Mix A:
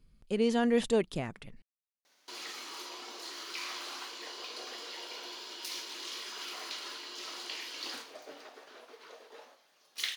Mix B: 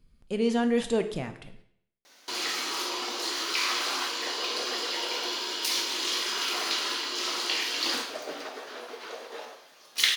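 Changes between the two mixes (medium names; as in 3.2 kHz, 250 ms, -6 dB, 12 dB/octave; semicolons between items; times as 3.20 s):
background +9.5 dB; reverb: on, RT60 0.65 s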